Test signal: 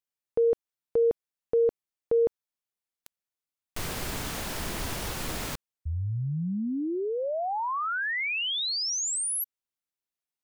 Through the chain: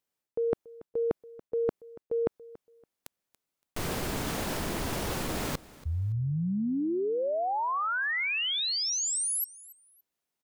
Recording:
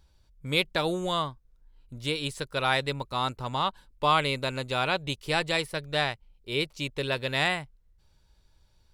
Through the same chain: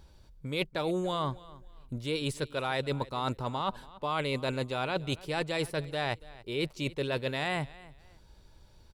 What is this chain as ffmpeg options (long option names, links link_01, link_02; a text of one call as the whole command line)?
ffmpeg -i in.wav -af "equalizer=frequency=330:width=0.35:gain=6.5,areverse,acompressor=threshold=-33dB:ratio=6:attack=7.6:release=263:knee=6:detection=peak,areverse,aecho=1:1:283|566:0.1|0.025,volume=4.5dB" out.wav